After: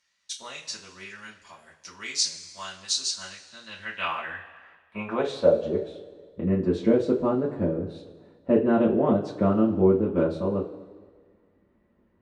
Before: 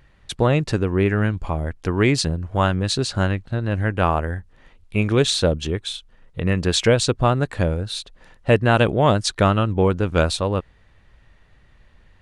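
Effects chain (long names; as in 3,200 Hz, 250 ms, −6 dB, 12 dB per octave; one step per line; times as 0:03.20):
band-pass filter sweep 6,000 Hz → 340 Hz, 0:03.32–0:05.89
coupled-rooms reverb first 0.21 s, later 1.6 s, from −19 dB, DRR −6.5 dB
level −2.5 dB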